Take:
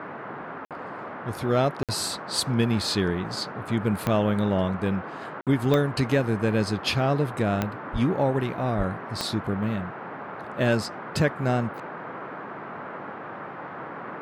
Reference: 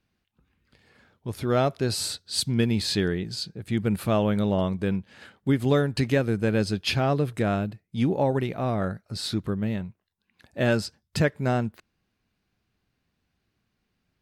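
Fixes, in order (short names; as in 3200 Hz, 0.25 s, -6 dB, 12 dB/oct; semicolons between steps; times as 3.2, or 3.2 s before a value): de-click; 7.92–8.04 HPF 140 Hz 24 dB/oct; 8.77–8.89 HPF 140 Hz 24 dB/oct; interpolate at 0.65/1.83/5.41, 57 ms; noise print and reduce 30 dB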